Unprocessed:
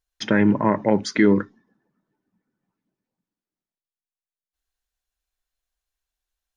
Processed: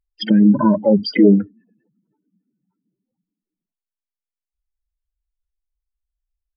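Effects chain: spectral contrast enhancement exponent 3.2; harmony voices +7 st -18 dB; resampled via 11.025 kHz; trim +6 dB

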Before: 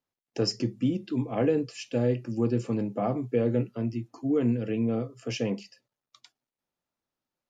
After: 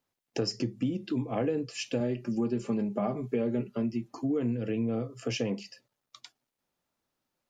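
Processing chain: 2.00–4.15 s: comb 5 ms, depth 63%; compression 3:1, threshold -35 dBFS, peak gain reduction 11.5 dB; trim +5.5 dB

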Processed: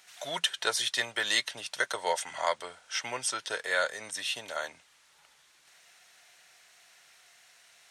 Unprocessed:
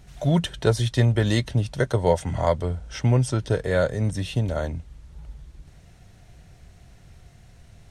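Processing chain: high-pass 1.3 kHz 12 dB/octave; trim +4 dB

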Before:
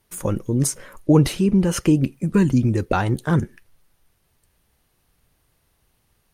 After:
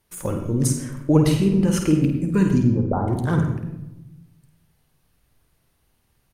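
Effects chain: 2.62–3.08 s: steep low-pass 1.1 kHz 36 dB/octave; speakerphone echo 100 ms, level -17 dB; on a send at -3.5 dB: reverberation RT60 0.95 s, pre-delay 51 ms; on the sum: trim -3 dB

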